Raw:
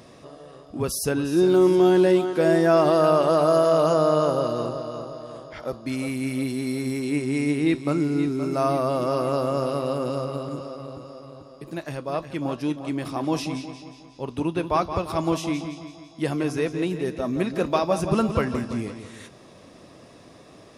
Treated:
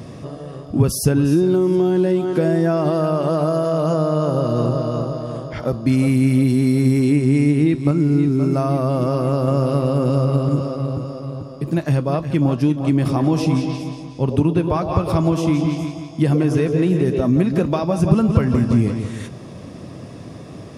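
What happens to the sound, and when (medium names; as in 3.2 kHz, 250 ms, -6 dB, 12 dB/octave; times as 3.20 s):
7.91–9.48 s: gain -4 dB
12.98–17.26 s: repeats whose band climbs or falls 105 ms, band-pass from 490 Hz, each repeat 1.4 oct, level -4 dB
whole clip: band-stop 3.9 kHz, Q 20; compression, threshold -26 dBFS; peaking EQ 120 Hz +13.5 dB 2.5 oct; trim +6 dB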